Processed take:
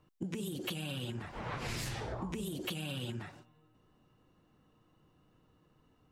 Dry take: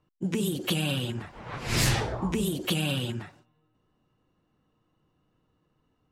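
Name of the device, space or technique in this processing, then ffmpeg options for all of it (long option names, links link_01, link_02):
serial compression, leveller first: -af "acompressor=threshold=-30dB:ratio=2.5,acompressor=threshold=-40dB:ratio=6,volume=3.5dB"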